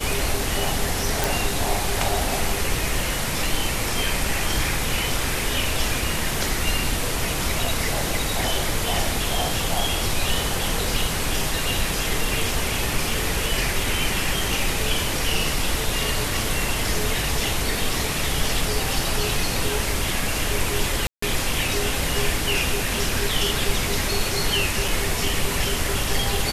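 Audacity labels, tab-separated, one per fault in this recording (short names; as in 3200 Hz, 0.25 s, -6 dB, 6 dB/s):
1.240000	1.240000	pop
21.070000	21.220000	gap 0.154 s
24.880000	24.880000	gap 3.1 ms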